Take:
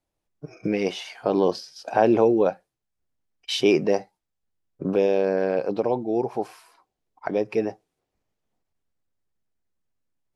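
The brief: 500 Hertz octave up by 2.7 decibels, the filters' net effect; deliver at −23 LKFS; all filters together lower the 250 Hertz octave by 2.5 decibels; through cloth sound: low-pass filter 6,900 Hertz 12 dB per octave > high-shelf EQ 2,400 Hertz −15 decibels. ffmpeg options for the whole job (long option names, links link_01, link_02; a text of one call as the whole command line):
ffmpeg -i in.wav -af "lowpass=6900,equalizer=frequency=250:width_type=o:gain=-7,equalizer=frequency=500:width_type=o:gain=6,highshelf=frequency=2400:gain=-15,volume=-1dB" out.wav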